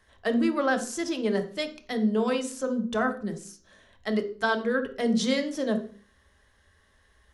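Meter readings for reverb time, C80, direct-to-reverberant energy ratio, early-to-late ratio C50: 0.45 s, 16.0 dB, 6.0 dB, 11.5 dB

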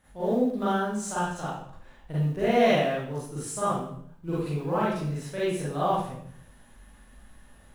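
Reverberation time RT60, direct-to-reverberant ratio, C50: 0.60 s, -10.0 dB, -1.5 dB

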